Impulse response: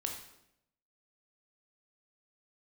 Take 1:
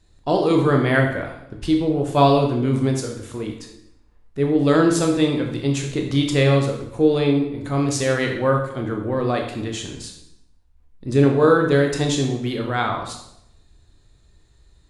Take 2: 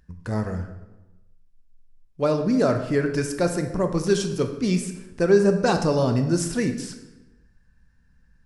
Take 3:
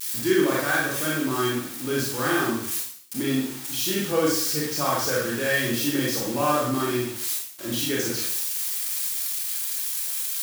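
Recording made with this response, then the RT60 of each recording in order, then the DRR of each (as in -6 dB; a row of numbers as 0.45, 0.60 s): 1; 0.80, 1.1, 0.60 s; 1.5, 6.0, -5.0 dB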